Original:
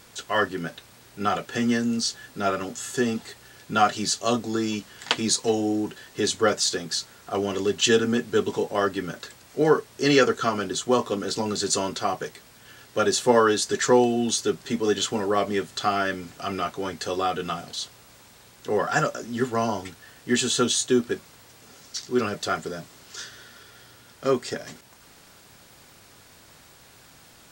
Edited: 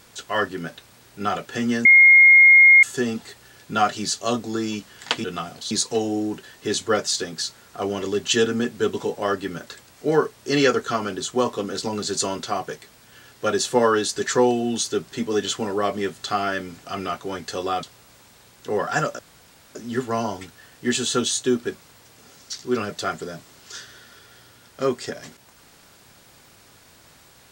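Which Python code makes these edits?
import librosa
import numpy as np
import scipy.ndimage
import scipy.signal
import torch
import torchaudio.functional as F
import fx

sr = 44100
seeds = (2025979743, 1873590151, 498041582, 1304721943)

y = fx.edit(x, sr, fx.bleep(start_s=1.85, length_s=0.98, hz=2140.0, db=-7.5),
    fx.move(start_s=17.36, length_s=0.47, to_s=5.24),
    fx.insert_room_tone(at_s=19.19, length_s=0.56), tone=tone)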